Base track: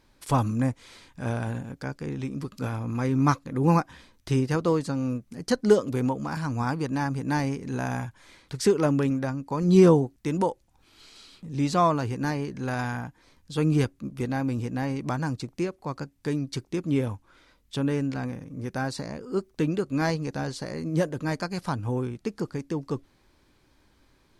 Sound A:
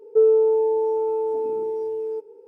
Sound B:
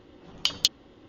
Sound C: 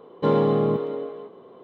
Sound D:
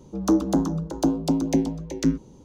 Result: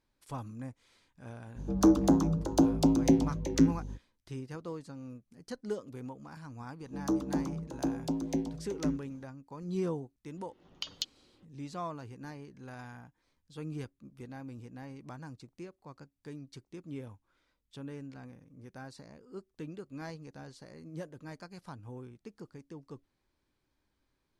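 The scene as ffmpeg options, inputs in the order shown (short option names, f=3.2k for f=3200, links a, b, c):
-filter_complex "[4:a]asplit=2[a][b];[0:a]volume=-17dB[c];[a]aeval=exprs='val(0)+0.0158*(sin(2*PI*50*n/s)+sin(2*PI*2*50*n/s)/2+sin(2*PI*3*50*n/s)/3+sin(2*PI*4*50*n/s)/4+sin(2*PI*5*50*n/s)/5)':c=same,atrim=end=2.44,asetpts=PTS-STARTPTS,volume=-2.5dB,afade=t=in:d=0.05,afade=t=out:st=2.39:d=0.05,adelay=1550[d];[b]atrim=end=2.44,asetpts=PTS-STARTPTS,volume=-10.5dB,afade=t=in:d=0.004:c=hsin,afade=t=out:st=2.436:d=0.004:c=hsin,adelay=6800[e];[2:a]atrim=end=1.08,asetpts=PTS-STARTPTS,volume=-13.5dB,afade=t=in:d=0.004:c=hsin,afade=t=out:st=1.076:d=0.004:c=hsin,adelay=10370[f];[c][d][e][f]amix=inputs=4:normalize=0"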